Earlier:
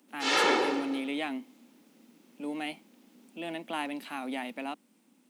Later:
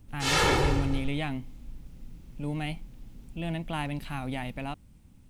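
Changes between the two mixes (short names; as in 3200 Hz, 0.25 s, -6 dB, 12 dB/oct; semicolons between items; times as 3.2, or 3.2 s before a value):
background: remove LPF 5500 Hz 12 dB/oct; master: remove steep high-pass 220 Hz 48 dB/oct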